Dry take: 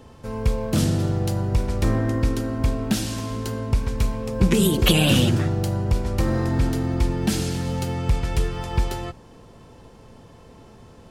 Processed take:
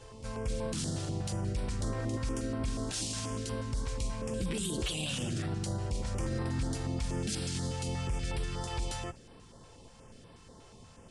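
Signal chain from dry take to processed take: steep low-pass 9.9 kHz 48 dB/octave; treble shelf 3.1 kHz +11 dB; peak limiter -17.5 dBFS, peak gain reduction 16 dB; feedback comb 530 Hz, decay 0.42 s; on a send: reverse echo 230 ms -13.5 dB; on the sum: step-sequenced notch 8.3 Hz 220–6600 Hz

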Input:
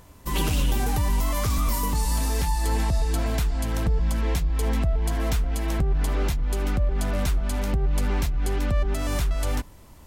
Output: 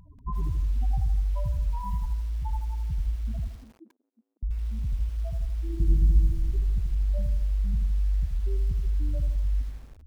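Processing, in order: spectral gate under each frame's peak -10 dB strong; peak limiter -23.5 dBFS, peak gain reduction 8 dB; 3.47–4.43 s: brick-wall FIR high-pass 230 Hz; 5.64–6.16 s: reverb throw, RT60 2.5 s, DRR -6.5 dB; bit-crushed delay 80 ms, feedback 55%, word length 8-bit, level -8 dB

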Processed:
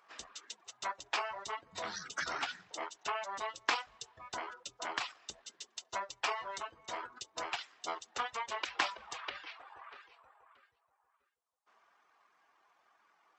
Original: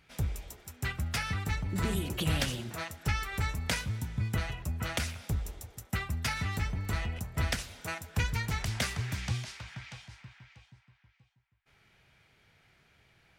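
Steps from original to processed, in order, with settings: reverb removal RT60 1.2 s; Bessel high-pass 1.4 kHz, order 2; pitch shift -12 st; trim +2 dB

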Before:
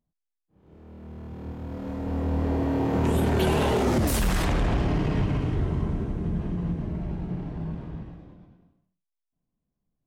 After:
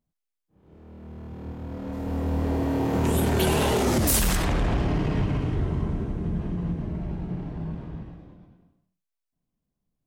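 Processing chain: 1.92–4.35 s: treble shelf 6.9 kHz -> 3.8 kHz +10.5 dB

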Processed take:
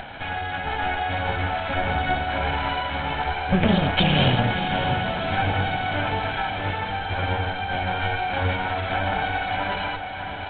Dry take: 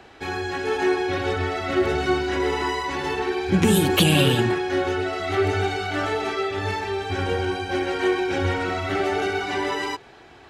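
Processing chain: comb filter that takes the minimum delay 1.3 ms; upward compressor, threshold -27 dBFS; on a send: echo that smears into a reverb 633 ms, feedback 58%, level -8.5 dB; on the sum: resampled via 8 kHz; trim +1 dB

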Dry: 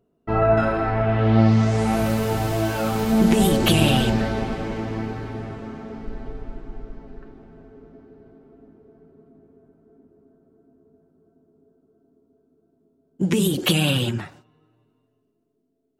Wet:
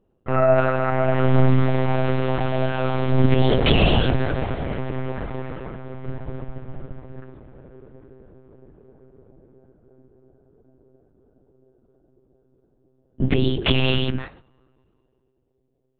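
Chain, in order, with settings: 5.06–5.73 s: comb 2.3 ms, depth 52%; monotone LPC vocoder at 8 kHz 130 Hz; trim +1.5 dB

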